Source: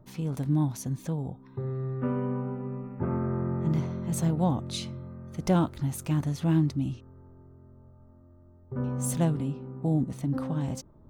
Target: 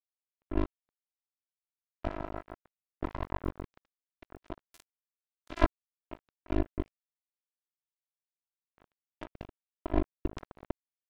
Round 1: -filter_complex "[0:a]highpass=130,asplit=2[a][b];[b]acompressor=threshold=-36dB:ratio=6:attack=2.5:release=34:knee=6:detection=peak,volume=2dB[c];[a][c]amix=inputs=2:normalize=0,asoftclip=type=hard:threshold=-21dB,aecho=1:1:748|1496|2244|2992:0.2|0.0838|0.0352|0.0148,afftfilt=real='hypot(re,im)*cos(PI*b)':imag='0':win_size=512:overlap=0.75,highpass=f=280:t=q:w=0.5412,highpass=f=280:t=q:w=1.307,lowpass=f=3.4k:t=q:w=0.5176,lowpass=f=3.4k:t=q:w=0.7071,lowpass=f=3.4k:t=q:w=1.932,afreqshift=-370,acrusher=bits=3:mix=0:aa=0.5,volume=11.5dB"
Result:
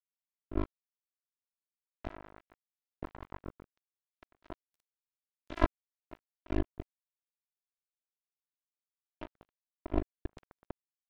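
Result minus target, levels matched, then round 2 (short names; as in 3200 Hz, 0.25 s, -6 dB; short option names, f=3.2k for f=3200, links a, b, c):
compressor: peak gain reduction +5.5 dB
-filter_complex "[0:a]highpass=130,asplit=2[a][b];[b]acompressor=threshold=-29.5dB:ratio=6:attack=2.5:release=34:knee=6:detection=peak,volume=2dB[c];[a][c]amix=inputs=2:normalize=0,asoftclip=type=hard:threshold=-21dB,aecho=1:1:748|1496|2244|2992:0.2|0.0838|0.0352|0.0148,afftfilt=real='hypot(re,im)*cos(PI*b)':imag='0':win_size=512:overlap=0.75,highpass=f=280:t=q:w=0.5412,highpass=f=280:t=q:w=1.307,lowpass=f=3.4k:t=q:w=0.5176,lowpass=f=3.4k:t=q:w=0.7071,lowpass=f=3.4k:t=q:w=1.932,afreqshift=-370,acrusher=bits=3:mix=0:aa=0.5,volume=11.5dB"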